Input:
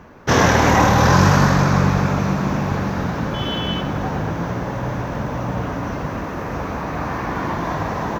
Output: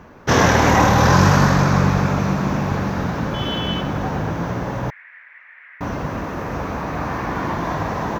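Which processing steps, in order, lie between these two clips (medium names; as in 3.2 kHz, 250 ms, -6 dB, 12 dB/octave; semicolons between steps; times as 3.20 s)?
4.90–5.81 s: Butterworth band-pass 2 kHz, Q 3.6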